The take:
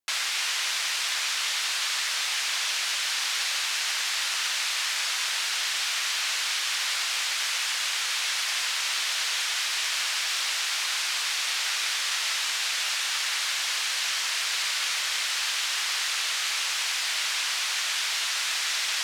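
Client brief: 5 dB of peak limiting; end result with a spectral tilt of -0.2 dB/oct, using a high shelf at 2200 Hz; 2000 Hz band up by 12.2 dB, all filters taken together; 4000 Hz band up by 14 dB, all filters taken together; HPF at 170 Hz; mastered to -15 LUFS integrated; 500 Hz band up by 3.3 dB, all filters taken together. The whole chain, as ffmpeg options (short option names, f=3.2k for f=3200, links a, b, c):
-af "highpass=170,equalizer=f=500:t=o:g=3,equalizer=f=2k:t=o:g=8,highshelf=f=2.2k:g=7.5,equalizer=f=4k:t=o:g=8,volume=-1.5dB,alimiter=limit=-7.5dB:level=0:latency=1"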